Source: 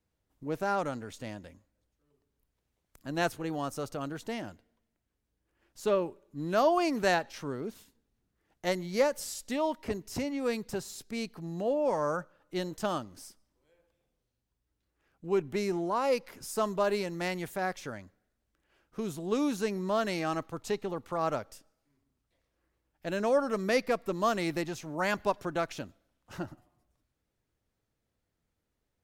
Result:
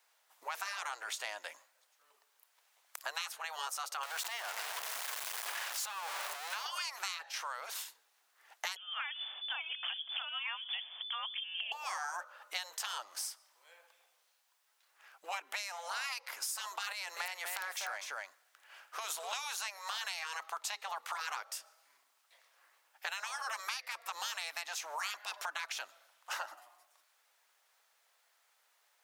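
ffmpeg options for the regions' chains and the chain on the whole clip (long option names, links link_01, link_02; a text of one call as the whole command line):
ffmpeg -i in.wav -filter_complex "[0:a]asettb=1/sr,asplit=3[link_01][link_02][link_03];[link_01]atrim=end=4.034[link_04];[link_02]atrim=start=4.03:end=6.66,asetpts=PTS-STARTPTS,afade=type=in:duration=0.004:curve=qsin,afade=type=out:start_time=2.626:duration=0.004:curve=qsin,aeval=exprs='val(0)+0.5*0.02*sgn(val(0))':channel_layout=same,acompressor=threshold=-38dB:ratio=2:attack=3.2:release=140:knee=1:detection=peak[link_05];[link_03]atrim=start=6.656[link_06];[link_04][link_05]acrossfade=duration=0.004:curve1=hsin:curve2=qsin[link_07];[link_07][link_06]acrossfade=duration=0.004:curve1=qsin:curve2=hsin,asettb=1/sr,asplit=3[link_08][link_09][link_10];[link_08]atrim=end=8.764[link_11];[link_09]atrim=start=8.76:end=11.72,asetpts=PTS-STARTPTS,afade=type=in:duration=0.004:curve=qsin,afade=type=out:start_time=2.956:duration=0.004:curve=qsin,equalizer=frequency=1900:width_type=o:width=2.2:gain=-7.5,lowpass=frequency=3000:width_type=q:width=0.5098,lowpass=frequency=3000:width_type=q:width=0.6013,lowpass=frequency=3000:width_type=q:width=0.9,lowpass=frequency=3000:width_type=q:width=2.563,afreqshift=-3500[link_12];[link_10]atrim=start=11.716[link_13];[link_11][link_12]acrossfade=duration=0.004:curve1=hsin:curve2=qsin[link_14];[link_14][link_13]acrossfade=duration=0.004:curve1=qsin:curve2=hsin,asettb=1/sr,asplit=3[link_15][link_16][link_17];[link_15]atrim=end=16.924[link_18];[link_16]atrim=start=16.92:end=19.33,asetpts=PTS-STARTPTS,afade=type=in:duration=0.004:curve=qsin,afade=type=out:start_time=2.406:duration=0.004:curve=qsin,acompressor=threshold=-34dB:ratio=6:attack=3.2:release=140:knee=1:detection=peak,aeval=exprs='(mod(25.1*val(0)+1,2)-1)/25.1':channel_layout=same,aecho=1:1:246:0.398,atrim=end_sample=106281[link_19];[link_17]atrim=start=19.326[link_20];[link_18][link_19]acrossfade=duration=0.004:curve1=hsin:curve2=qsin[link_21];[link_21][link_20]acrossfade=duration=0.004:curve1=qsin:curve2=hsin,afftfilt=real='re*lt(hypot(re,im),0.0631)':imag='im*lt(hypot(re,im),0.0631)':win_size=1024:overlap=0.75,highpass=frequency=780:width=0.5412,highpass=frequency=780:width=1.3066,acompressor=threshold=-52dB:ratio=10,volume=16dB" out.wav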